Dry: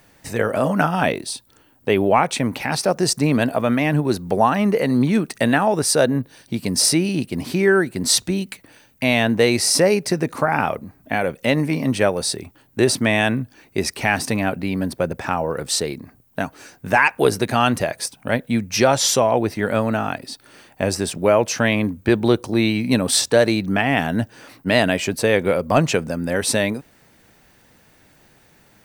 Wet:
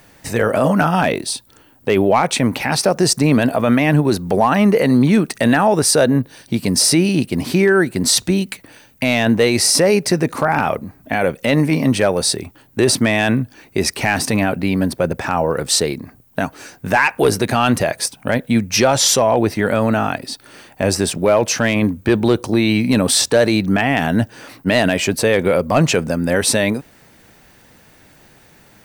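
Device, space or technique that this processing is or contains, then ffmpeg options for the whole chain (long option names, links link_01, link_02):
clipper into limiter: -af "asoftclip=type=hard:threshold=-6dB,alimiter=limit=-10.5dB:level=0:latency=1:release=11,volume=5.5dB"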